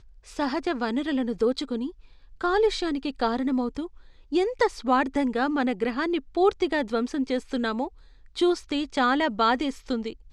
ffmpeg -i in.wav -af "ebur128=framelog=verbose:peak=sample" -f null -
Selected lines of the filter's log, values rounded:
Integrated loudness:
  I:         -26.1 LUFS
  Threshold: -36.4 LUFS
Loudness range:
  LRA:         2.1 LU
  Threshold: -46.3 LUFS
  LRA low:   -27.4 LUFS
  LRA high:  -25.4 LUFS
Sample peak:
  Peak:       -9.6 dBFS